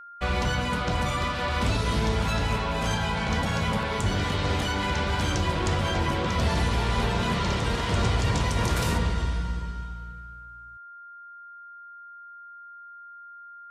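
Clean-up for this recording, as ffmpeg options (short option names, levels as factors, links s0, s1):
-af "bandreject=f=1400:w=30"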